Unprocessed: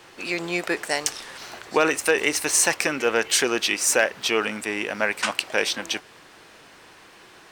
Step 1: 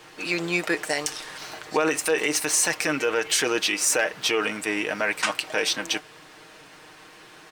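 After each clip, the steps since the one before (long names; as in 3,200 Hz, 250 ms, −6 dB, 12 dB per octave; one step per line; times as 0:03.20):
comb filter 6.5 ms, depth 53%
brickwall limiter −11.5 dBFS, peak gain reduction 7.5 dB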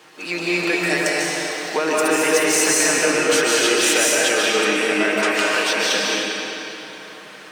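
high-pass filter 150 Hz 24 dB per octave
convolution reverb RT60 3.3 s, pre-delay 105 ms, DRR −6.5 dB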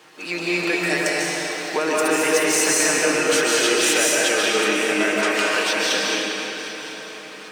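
feedback echo with a long and a short gap by turns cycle 1,003 ms, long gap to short 3 to 1, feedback 41%, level −16 dB
level −1.5 dB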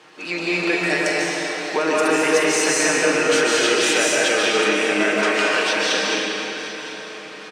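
high-frequency loss of the air 52 metres
double-tracking delay 44 ms −11 dB
level +1.5 dB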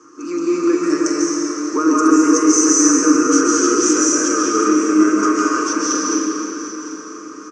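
drawn EQ curve 110 Hz 0 dB, 180 Hz −9 dB, 290 Hz +14 dB, 760 Hz −22 dB, 1,200 Hz +10 dB, 1,800 Hz −14 dB, 3,900 Hz −23 dB, 6,100 Hz +11 dB, 12,000 Hz −26 dB
level +1 dB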